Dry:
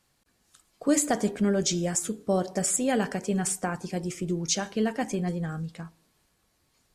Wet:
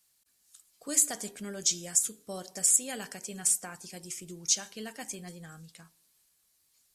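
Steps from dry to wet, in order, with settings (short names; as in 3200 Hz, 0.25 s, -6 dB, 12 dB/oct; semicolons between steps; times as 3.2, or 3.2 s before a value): pre-emphasis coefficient 0.9; gain +3.5 dB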